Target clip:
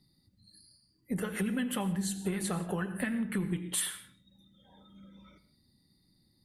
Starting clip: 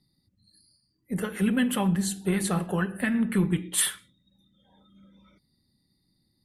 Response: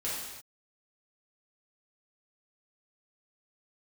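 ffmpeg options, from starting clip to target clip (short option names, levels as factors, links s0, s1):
-filter_complex "[0:a]acompressor=threshold=0.0251:ratio=6,asplit=2[s0][s1];[1:a]atrim=start_sample=2205,atrim=end_sample=4410,adelay=84[s2];[s1][s2]afir=irnorm=-1:irlink=0,volume=0.133[s3];[s0][s3]amix=inputs=2:normalize=0,volume=1.26"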